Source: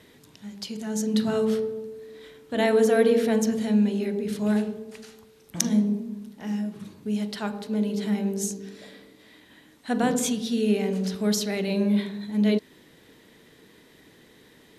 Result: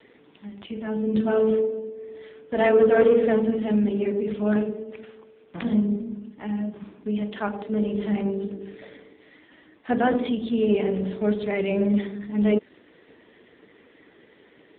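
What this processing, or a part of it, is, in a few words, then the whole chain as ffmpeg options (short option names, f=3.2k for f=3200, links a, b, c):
telephone: -filter_complex "[0:a]asettb=1/sr,asplit=3[a][b][c];[a]atrim=end=2.734[d];[b]atrim=start=2.73:end=3.85,asetpts=PTS-STARTPTS,afade=t=in:d=0.004:c=qsin,afade=t=out:st=1.116:d=0.004:c=qsin,asubboost=boost=4:cutoff=100[e];[c]atrim=start=3.846[f];[d][e]acrossfade=d=0.004:c1=hsin:c2=qsin[g];[g][f]acrossfade=d=0.004:c1=qsin:c2=hsin,highpass=260,lowpass=3.3k,asoftclip=type=tanh:threshold=-15.5dB,volume=6dB" -ar 8000 -c:a libopencore_amrnb -b:a 5900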